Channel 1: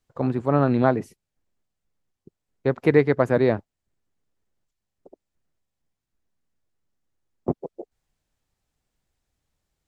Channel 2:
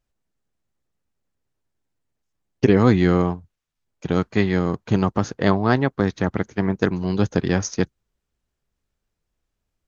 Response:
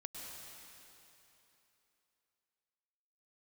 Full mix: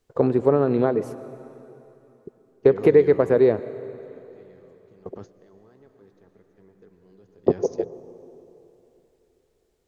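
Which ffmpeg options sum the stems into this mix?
-filter_complex "[0:a]acompressor=threshold=0.0708:ratio=12,volume=1.26,asplit=3[s0][s1][s2];[s1]volume=0.398[s3];[1:a]alimiter=limit=0.251:level=0:latency=1:release=12,volume=0.119,asplit=2[s4][s5];[s5]volume=0.141[s6];[s2]apad=whole_len=435424[s7];[s4][s7]sidechaingate=range=0.0562:threshold=0.00141:ratio=16:detection=peak[s8];[2:a]atrim=start_sample=2205[s9];[s3][s6]amix=inputs=2:normalize=0[s10];[s10][s9]afir=irnorm=-1:irlink=0[s11];[s0][s8][s11]amix=inputs=3:normalize=0,equalizer=f=430:t=o:w=0.68:g=12"

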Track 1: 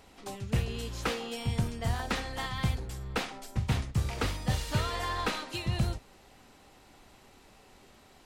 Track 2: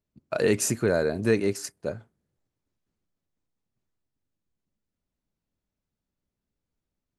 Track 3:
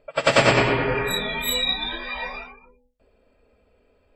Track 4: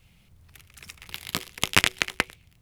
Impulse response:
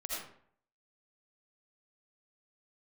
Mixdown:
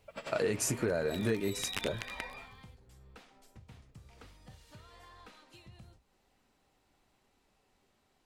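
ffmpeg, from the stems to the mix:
-filter_complex "[0:a]acompressor=threshold=0.0112:ratio=2.5,flanger=delay=4:depth=6.5:regen=-77:speed=0.95:shape=sinusoidal,volume=0.266[s0];[1:a]flanger=delay=1.3:depth=9.8:regen=-46:speed=1:shape=sinusoidal,volume=1.41[s1];[2:a]alimiter=limit=0.158:level=0:latency=1:release=295,asoftclip=type=hard:threshold=0.0841,volume=0.2[s2];[3:a]alimiter=limit=0.282:level=0:latency=1:release=143,volume=0.299[s3];[s0][s1][s2][s3]amix=inputs=4:normalize=0,acompressor=threshold=0.0398:ratio=6"

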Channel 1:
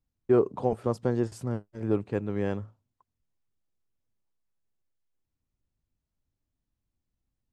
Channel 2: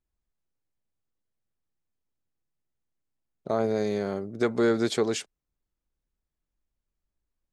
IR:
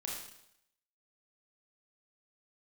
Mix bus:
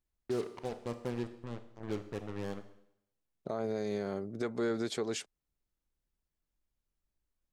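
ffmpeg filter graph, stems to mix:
-filter_complex "[0:a]acrusher=bits=4:mix=0:aa=0.5,volume=0.224,asplit=2[s0][s1];[s1]volume=0.473[s2];[1:a]volume=0.794[s3];[2:a]atrim=start_sample=2205[s4];[s2][s4]afir=irnorm=-1:irlink=0[s5];[s0][s3][s5]amix=inputs=3:normalize=0,alimiter=level_in=1.06:limit=0.0631:level=0:latency=1:release=379,volume=0.944"

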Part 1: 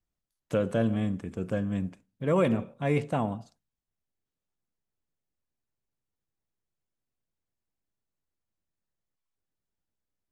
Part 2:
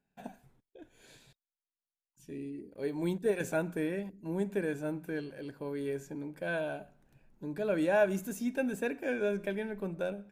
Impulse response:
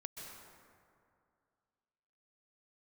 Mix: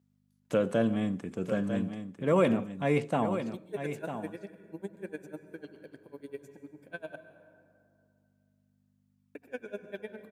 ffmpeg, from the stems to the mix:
-filter_complex "[0:a]aeval=exprs='val(0)+0.000794*(sin(2*PI*50*n/s)+sin(2*PI*2*50*n/s)/2+sin(2*PI*3*50*n/s)/3+sin(2*PI*4*50*n/s)/4+sin(2*PI*5*50*n/s)/5)':c=same,volume=1.06,asplit=3[s0][s1][s2];[s1]volume=0.335[s3];[1:a]aeval=exprs='val(0)*pow(10,-34*(0.5-0.5*cos(2*PI*10*n/s))/20)':c=same,adelay=450,volume=0.596,asplit=3[s4][s5][s6];[s4]atrim=end=7.16,asetpts=PTS-STARTPTS,afade=t=out:st=7.156:d=0.004:c=hsin[s7];[s5]atrim=start=7.16:end=9.35,asetpts=PTS-STARTPTS,volume=0[s8];[s6]atrim=start=9.35,asetpts=PTS-STARTPTS,afade=t=in:d=0.004:c=hsin[s9];[s7][s8][s9]concat=n=3:v=0:a=1,asplit=2[s10][s11];[s11]volume=0.708[s12];[s2]apad=whole_len=474687[s13];[s10][s13]sidechaincompress=threshold=0.0251:ratio=8:attack=16:release=1010[s14];[2:a]atrim=start_sample=2205[s15];[s12][s15]afir=irnorm=-1:irlink=0[s16];[s3]aecho=0:1:949:1[s17];[s0][s14][s16][s17]amix=inputs=4:normalize=0,highpass=160"

